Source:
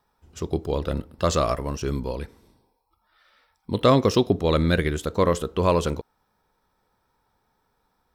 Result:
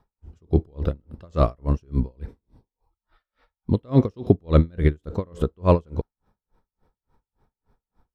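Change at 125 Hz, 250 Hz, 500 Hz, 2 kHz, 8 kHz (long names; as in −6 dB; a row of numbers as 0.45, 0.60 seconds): +4.0 dB, +0.5 dB, −3.0 dB, −9.5 dB, below −20 dB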